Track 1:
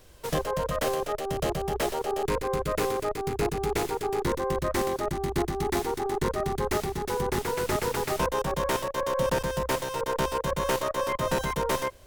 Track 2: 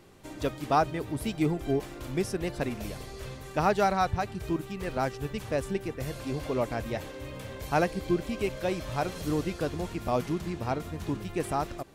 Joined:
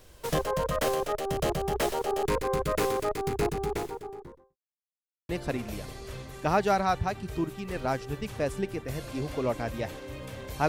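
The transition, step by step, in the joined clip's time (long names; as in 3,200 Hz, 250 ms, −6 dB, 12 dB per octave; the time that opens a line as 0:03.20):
track 1
0:03.24–0:04.57: fade out and dull
0:04.57–0:05.29: silence
0:05.29: continue with track 2 from 0:02.41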